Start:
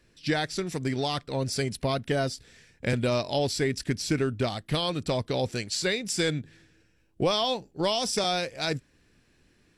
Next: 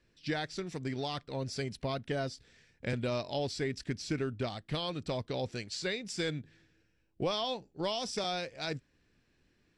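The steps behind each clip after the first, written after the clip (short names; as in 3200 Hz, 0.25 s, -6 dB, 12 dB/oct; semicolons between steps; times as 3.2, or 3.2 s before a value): LPF 6400 Hz 12 dB/oct; gain -7.5 dB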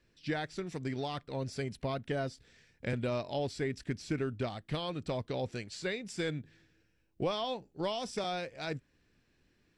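dynamic EQ 5000 Hz, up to -7 dB, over -53 dBFS, Q 1.1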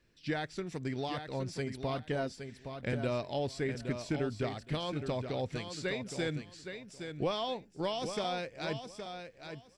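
feedback echo 0.817 s, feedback 19%, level -8 dB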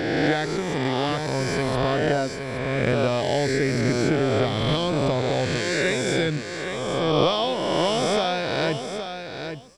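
spectral swells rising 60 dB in 2.28 s; gain +8.5 dB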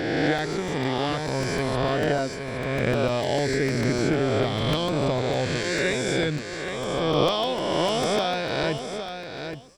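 crackling interface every 0.15 s, samples 128, repeat, from 0.38; gain -1.5 dB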